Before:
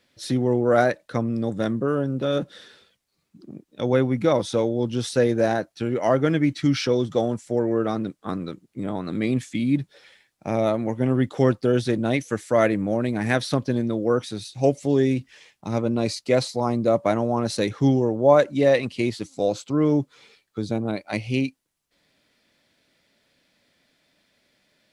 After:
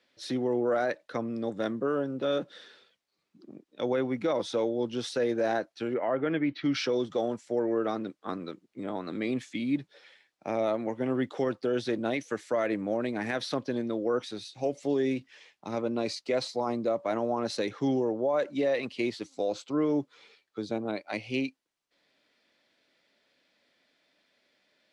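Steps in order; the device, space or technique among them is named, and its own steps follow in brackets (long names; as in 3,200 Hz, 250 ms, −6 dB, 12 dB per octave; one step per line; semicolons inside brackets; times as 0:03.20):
0:05.93–0:06.73: low-pass filter 2,300 Hz → 4,600 Hz 24 dB per octave
DJ mixer with the lows and highs turned down (three-way crossover with the lows and the highs turned down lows −14 dB, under 240 Hz, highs −12 dB, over 6,200 Hz; brickwall limiter −15.5 dBFS, peak gain reduction 11 dB)
level −3.5 dB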